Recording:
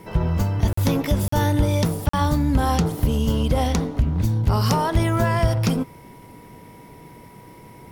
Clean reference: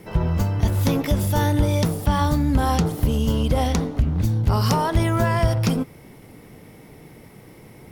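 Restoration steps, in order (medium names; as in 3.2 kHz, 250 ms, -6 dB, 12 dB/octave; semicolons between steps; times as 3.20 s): band-stop 970 Hz, Q 30; interpolate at 0.73/1.28/2.09 s, 44 ms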